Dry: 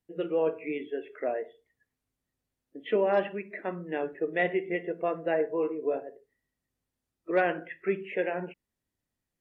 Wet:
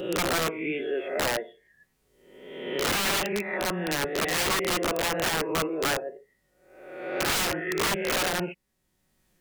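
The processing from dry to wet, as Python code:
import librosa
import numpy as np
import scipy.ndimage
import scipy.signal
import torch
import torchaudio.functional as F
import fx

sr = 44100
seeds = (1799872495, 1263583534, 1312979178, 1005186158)

y = fx.spec_swells(x, sr, rise_s=0.8)
y = y + 0.45 * np.pad(y, (int(5.4 * sr / 1000.0), 0))[:len(y)]
y = fx.wow_flutter(y, sr, seeds[0], rate_hz=2.1, depth_cents=27.0)
y = (np.mod(10.0 ** (23.0 / 20.0) * y + 1.0, 2.0) - 1.0) / 10.0 ** (23.0 / 20.0)
y = fx.band_squash(y, sr, depth_pct=40)
y = y * librosa.db_to_amplitude(2.5)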